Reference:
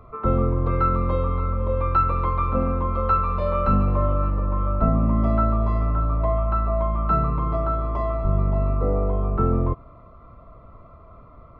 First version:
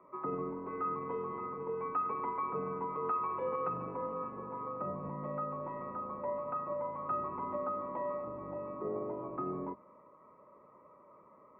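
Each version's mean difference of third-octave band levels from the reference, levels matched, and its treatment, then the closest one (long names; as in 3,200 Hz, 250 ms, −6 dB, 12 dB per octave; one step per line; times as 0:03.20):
4.5 dB: sub-octave generator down 1 octave, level −6 dB
brickwall limiter −15 dBFS, peak gain reduction 7.5 dB
single-sideband voice off tune −72 Hz 280–2,500 Hz
level −8.5 dB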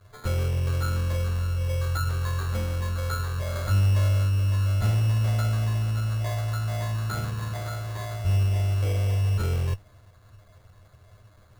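13.0 dB: lower of the sound and its delayed copy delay 9.7 ms
graphic EQ with 15 bands 100 Hz +11 dB, 250 Hz −7 dB, 1,600 Hz −7 dB
decimation without filtering 16×
level −8.5 dB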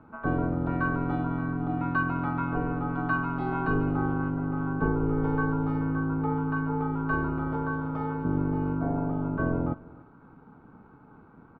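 6.0 dB: ring modulation 210 Hz
high-frequency loss of the air 92 metres
single-tap delay 295 ms −22 dB
level −4 dB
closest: first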